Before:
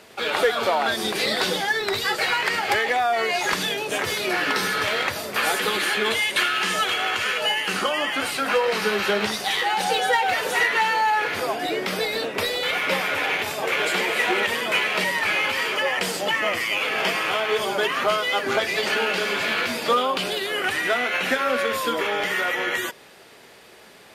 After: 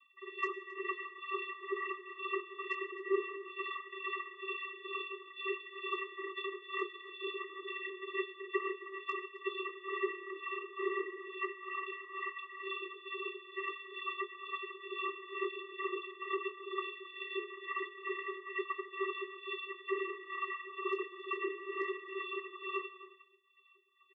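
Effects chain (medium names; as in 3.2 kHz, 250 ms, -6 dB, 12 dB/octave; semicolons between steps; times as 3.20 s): steep low-pass 2.7 kHz 96 dB/octave; bass shelf 170 Hz +11.5 dB; spectral gate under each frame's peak -25 dB weak; compression 16:1, threshold -46 dBFS, peak gain reduction 17 dB; tremolo 2.2 Hz, depth 81%; hard clipper -39.5 dBFS, distortion -33 dB; vocoder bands 32, square 387 Hz; doubling 22 ms -6.5 dB; echo from a far wall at 46 m, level -15 dB; reverberation RT60 0.95 s, pre-delay 55 ms, DRR 17.5 dB; trim +18 dB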